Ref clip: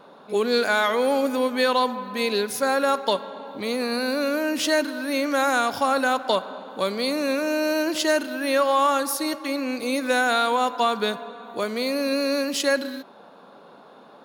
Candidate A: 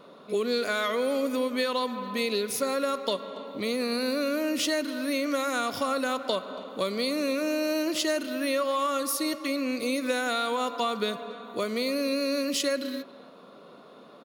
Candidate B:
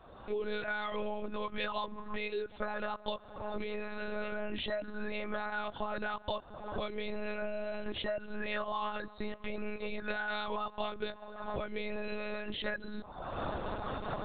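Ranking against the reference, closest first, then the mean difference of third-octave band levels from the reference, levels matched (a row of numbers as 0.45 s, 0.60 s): A, B; 2.5 dB, 13.5 dB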